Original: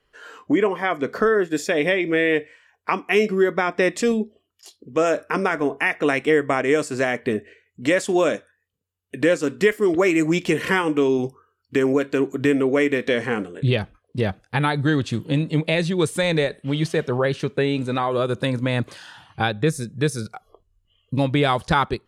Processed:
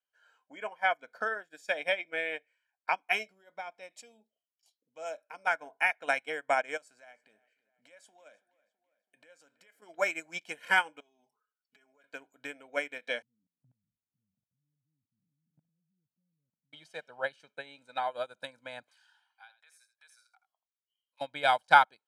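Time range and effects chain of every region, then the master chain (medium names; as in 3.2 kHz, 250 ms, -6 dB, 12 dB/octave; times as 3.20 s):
3.29–5.47 s: peaking EQ 1.6 kHz -9 dB 0.38 oct + band-stop 1.3 kHz, Q 29 + compression 2.5:1, threshold -22 dBFS
6.77–9.82 s: compression 5:1, threshold -27 dBFS + filtered feedback delay 329 ms, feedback 60%, low-pass 4.7 kHz, level -18 dB
11.00–12.04 s: compression 10:1, threshold -33 dBFS + comb 4.8 ms, depth 98%
13.22–16.73 s: jump at every zero crossing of -28 dBFS + inverse Chebyshev low-pass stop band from 660 Hz, stop band 60 dB + level held to a coarse grid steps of 19 dB
18.90–21.21 s: high-pass 890 Hz 24 dB/octave + compression 2:1, threshold -37 dBFS + delay 81 ms -11 dB
whole clip: high-pass 530 Hz 12 dB/octave; comb 1.3 ms, depth 76%; upward expansion 2.5:1, over -32 dBFS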